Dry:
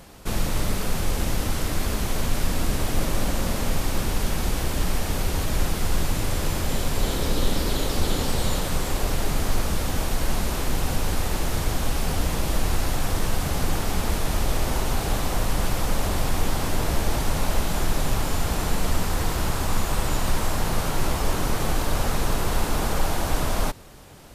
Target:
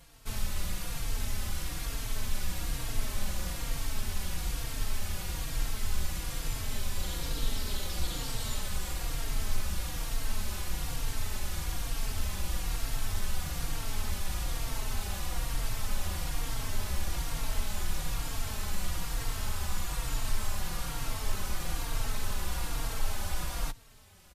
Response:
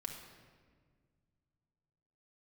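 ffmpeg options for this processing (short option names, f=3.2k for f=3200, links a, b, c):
-filter_complex "[0:a]equalizer=f=380:w=0.4:g=-10,asplit=2[a][b];[b]adelay=3.8,afreqshift=-1.1[c];[a][c]amix=inputs=2:normalize=1,volume=-4dB"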